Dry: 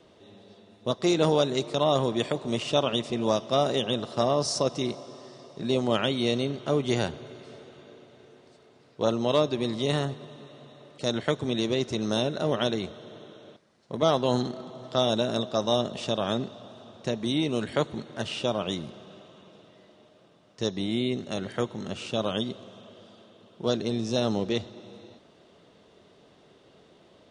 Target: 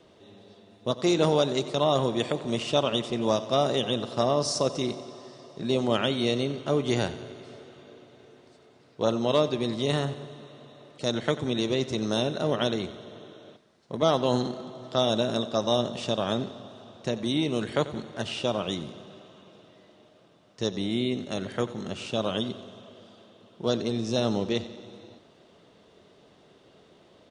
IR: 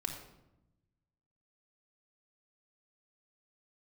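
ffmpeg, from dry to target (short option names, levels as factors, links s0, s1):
-af "aecho=1:1:91|182|273|364|455|546:0.158|0.0935|0.0552|0.0326|0.0192|0.0113"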